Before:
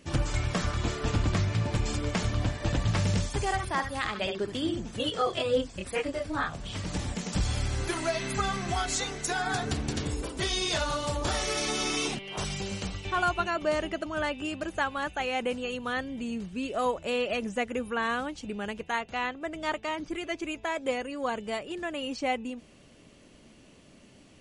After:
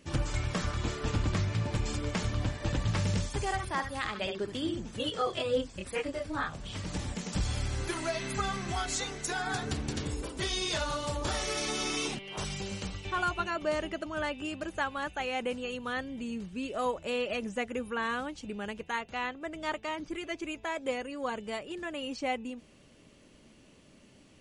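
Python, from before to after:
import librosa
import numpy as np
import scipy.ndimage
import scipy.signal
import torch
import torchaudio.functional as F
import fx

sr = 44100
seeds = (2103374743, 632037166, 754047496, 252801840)

y = fx.notch(x, sr, hz=700.0, q=18.0)
y = y * 10.0 ** (-3.0 / 20.0)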